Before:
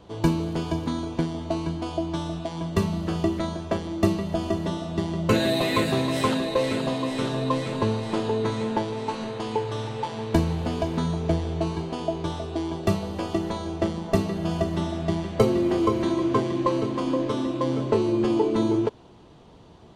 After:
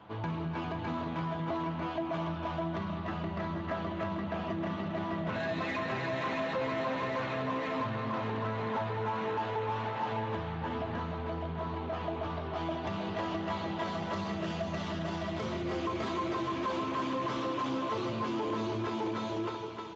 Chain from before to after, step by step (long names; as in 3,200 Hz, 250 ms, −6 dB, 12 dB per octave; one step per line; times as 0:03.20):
low-pass filter 2,200 Hz 12 dB per octave, from 0:12.54 3,700 Hz, from 0:13.83 8,800 Hz
echo with a time of its own for lows and highs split 320 Hz, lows 206 ms, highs 311 ms, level −10 dB
flanger 0.98 Hz, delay 9 ms, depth 2.7 ms, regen −29%
parametric band 440 Hz −14.5 dB 2 octaves
brickwall limiter −27 dBFS, peak gain reduction 11 dB
dynamic equaliser 560 Hz, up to +3 dB, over −50 dBFS, Q 1.6
multi-tap delay 45/202/295/606/676 ms −19/−15/−8.5/−4.5/−12.5 dB
downward compressor 4 to 1, threshold −36 dBFS, peak gain reduction 7 dB
mid-hump overdrive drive 19 dB, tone 1,500 Hz, clips at −26 dBFS
level +2.5 dB
Speex 17 kbit/s 16,000 Hz